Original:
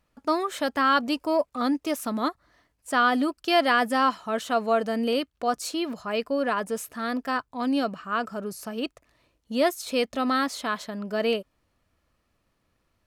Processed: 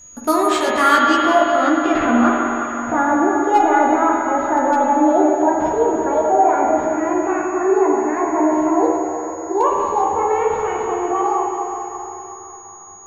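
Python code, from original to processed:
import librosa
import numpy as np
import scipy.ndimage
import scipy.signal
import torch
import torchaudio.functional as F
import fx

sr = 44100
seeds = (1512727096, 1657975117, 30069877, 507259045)

p1 = fx.pitch_glide(x, sr, semitones=11.5, runs='starting unshifted')
p2 = fx.high_shelf(p1, sr, hz=4100.0, db=-5.0)
p3 = fx.over_compress(p2, sr, threshold_db=-36.0, ratio=-1.0)
p4 = p2 + (p3 * librosa.db_to_amplitude(-2.5))
p5 = fx.sample_hold(p4, sr, seeds[0], rate_hz=11000.0, jitter_pct=0)
p6 = fx.filter_sweep_lowpass(p5, sr, from_hz=13000.0, to_hz=840.0, start_s=0.11, end_s=2.9, q=1.2)
p7 = p6 + 10.0 ** (-48.0 / 20.0) * np.sin(2.0 * np.pi * 6700.0 * np.arange(len(p6)) / sr)
p8 = np.clip(p7, -10.0 ** (-14.5 / 20.0), 10.0 ** (-14.5 / 20.0))
p9 = fx.doubler(p8, sr, ms=13.0, db=-5.5)
p10 = fx.echo_banded(p9, sr, ms=370, feedback_pct=67, hz=1400.0, wet_db=-11.5)
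p11 = fx.rev_spring(p10, sr, rt60_s=3.2, pass_ms=(42, 46, 55), chirp_ms=60, drr_db=-1.5)
y = p11 * librosa.db_to_amplitude(5.0)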